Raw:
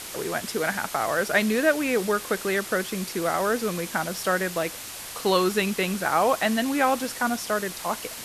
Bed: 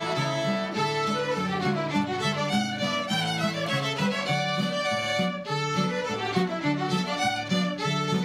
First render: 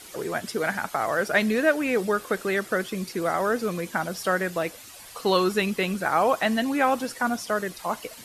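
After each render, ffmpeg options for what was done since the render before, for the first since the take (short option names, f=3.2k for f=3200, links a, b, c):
-af "afftdn=nr=11:nf=-38"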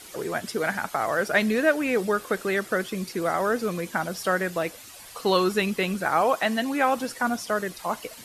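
-filter_complex "[0:a]asettb=1/sr,asplit=3[a][b][c];[a]atrim=end=6.214[d];[b]atrim=start=6.21:end=6.97,asetpts=PTS-STARTPTS,afade=t=in:d=0.004:c=qsin,afade=t=out:st=0.756:d=0.004:c=qsin,highpass=f=200:p=1[e];[c]atrim=start=6.966[f];[d][e]acrossfade=d=0.004:c1=hsin:c2=qsin[g];[g][f]acrossfade=d=0.004:c1=qsin:c2=hsin"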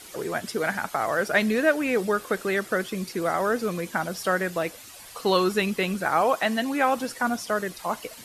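-af anull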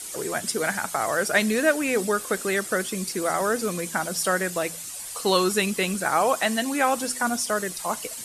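-af "equalizer=f=8.6k:t=o:w=1.2:g=13.5,bandreject=f=83.3:t=h:w=4,bandreject=f=166.6:t=h:w=4,bandreject=f=249.9:t=h:w=4"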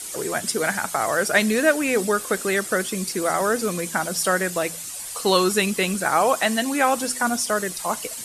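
-af "volume=2.5dB"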